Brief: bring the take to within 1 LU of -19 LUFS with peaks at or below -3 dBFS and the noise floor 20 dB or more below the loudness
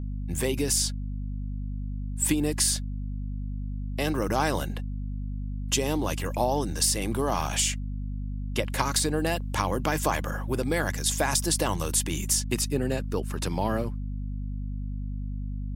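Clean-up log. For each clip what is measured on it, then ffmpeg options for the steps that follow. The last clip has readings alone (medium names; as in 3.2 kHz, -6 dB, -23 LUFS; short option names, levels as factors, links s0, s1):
hum 50 Hz; highest harmonic 250 Hz; hum level -30 dBFS; loudness -28.0 LUFS; peak level -9.0 dBFS; loudness target -19.0 LUFS
-> -af "bandreject=f=50:t=h:w=4,bandreject=f=100:t=h:w=4,bandreject=f=150:t=h:w=4,bandreject=f=200:t=h:w=4,bandreject=f=250:t=h:w=4"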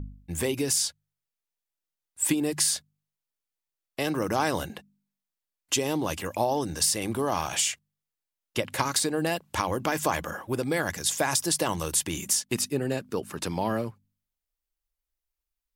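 hum not found; loudness -27.5 LUFS; peak level -9.5 dBFS; loudness target -19.0 LUFS
-> -af "volume=2.66,alimiter=limit=0.708:level=0:latency=1"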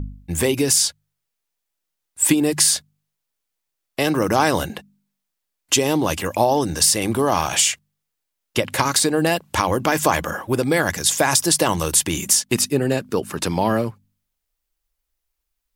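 loudness -19.0 LUFS; peak level -3.0 dBFS; noise floor -80 dBFS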